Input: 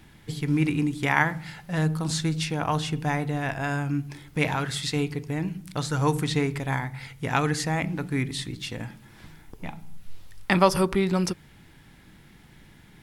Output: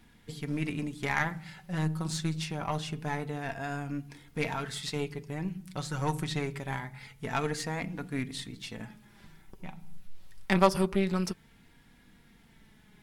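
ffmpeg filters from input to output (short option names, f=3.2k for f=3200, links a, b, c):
-af "flanger=delay=4.2:depth=1.2:regen=39:speed=0.25:shape=sinusoidal,aeval=exprs='0.501*(cos(1*acos(clip(val(0)/0.501,-1,1)))-cos(1*PI/2))+0.0316*(cos(8*acos(clip(val(0)/0.501,-1,1)))-cos(8*PI/2))':c=same,volume=-3dB"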